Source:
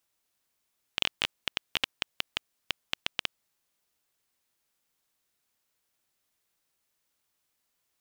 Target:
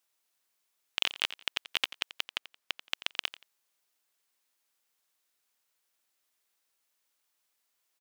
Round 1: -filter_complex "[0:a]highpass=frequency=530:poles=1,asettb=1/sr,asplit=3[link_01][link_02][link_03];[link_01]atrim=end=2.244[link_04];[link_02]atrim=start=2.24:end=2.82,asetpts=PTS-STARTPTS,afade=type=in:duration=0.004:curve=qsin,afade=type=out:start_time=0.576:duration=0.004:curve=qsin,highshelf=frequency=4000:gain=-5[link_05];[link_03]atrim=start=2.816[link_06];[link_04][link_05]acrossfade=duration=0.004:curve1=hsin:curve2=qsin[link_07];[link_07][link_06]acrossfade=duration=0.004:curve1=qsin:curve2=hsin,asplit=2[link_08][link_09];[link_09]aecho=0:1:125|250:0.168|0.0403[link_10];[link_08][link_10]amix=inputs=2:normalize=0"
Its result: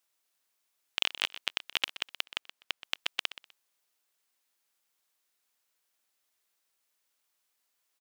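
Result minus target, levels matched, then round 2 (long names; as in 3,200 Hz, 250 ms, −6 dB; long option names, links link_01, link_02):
echo 38 ms late
-filter_complex "[0:a]highpass=frequency=530:poles=1,asettb=1/sr,asplit=3[link_01][link_02][link_03];[link_01]atrim=end=2.244[link_04];[link_02]atrim=start=2.24:end=2.82,asetpts=PTS-STARTPTS,afade=type=in:duration=0.004:curve=qsin,afade=type=out:start_time=0.576:duration=0.004:curve=qsin,highshelf=frequency=4000:gain=-5[link_05];[link_03]atrim=start=2.816[link_06];[link_04][link_05]acrossfade=duration=0.004:curve1=hsin:curve2=qsin[link_07];[link_07][link_06]acrossfade=duration=0.004:curve1=qsin:curve2=hsin,asplit=2[link_08][link_09];[link_09]aecho=0:1:87|174:0.168|0.0403[link_10];[link_08][link_10]amix=inputs=2:normalize=0"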